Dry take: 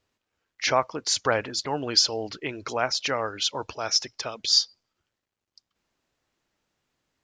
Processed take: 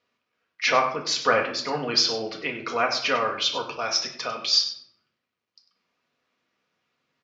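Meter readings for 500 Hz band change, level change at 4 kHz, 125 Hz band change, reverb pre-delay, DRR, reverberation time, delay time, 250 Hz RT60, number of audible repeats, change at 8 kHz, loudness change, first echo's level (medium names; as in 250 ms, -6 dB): +2.0 dB, +0.5 dB, -2.5 dB, 4 ms, 0.5 dB, 0.70 s, 98 ms, 1.2 s, 1, -3.5 dB, +1.5 dB, -13.0 dB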